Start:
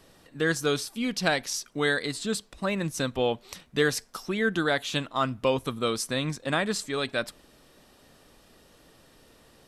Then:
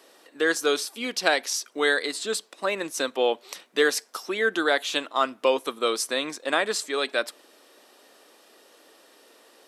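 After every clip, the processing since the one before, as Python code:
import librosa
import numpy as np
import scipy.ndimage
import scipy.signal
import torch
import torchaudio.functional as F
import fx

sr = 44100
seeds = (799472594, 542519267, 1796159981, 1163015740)

y = scipy.signal.sosfilt(scipy.signal.butter(4, 320.0, 'highpass', fs=sr, output='sos'), x)
y = F.gain(torch.from_numpy(y), 3.5).numpy()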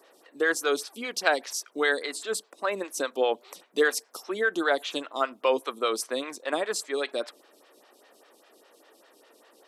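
y = fx.stagger_phaser(x, sr, hz=5.0)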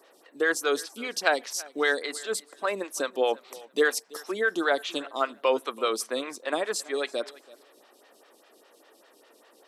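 y = fx.echo_feedback(x, sr, ms=332, feedback_pct=18, wet_db=-21.5)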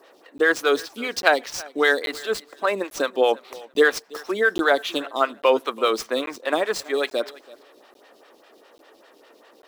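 y = scipy.signal.medfilt(x, 5)
y = fx.buffer_crackle(y, sr, first_s=0.38, period_s=0.84, block=512, kind='zero')
y = F.gain(torch.from_numpy(y), 6.0).numpy()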